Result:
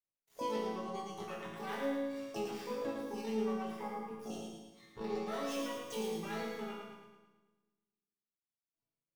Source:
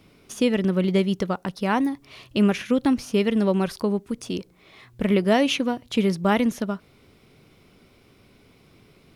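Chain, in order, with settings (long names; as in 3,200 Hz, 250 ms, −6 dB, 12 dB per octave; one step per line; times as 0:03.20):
gap after every zero crossing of 0.07 ms
noise gate −49 dBFS, range −50 dB
hum removal 86.93 Hz, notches 7
noise reduction from a noise print of the clip's start 10 dB
dynamic equaliser 9,600 Hz, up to −4 dB, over −59 dBFS, Q 4.6
downward compressor 5 to 1, threshold −32 dBFS, peak gain reduction 16 dB
pitch-shifted copies added +12 semitones −1 dB
resonators tuned to a chord A2 major, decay 0.82 s
echo with a time of its own for lows and highs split 330 Hz, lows 149 ms, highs 110 ms, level −4 dB
level +10.5 dB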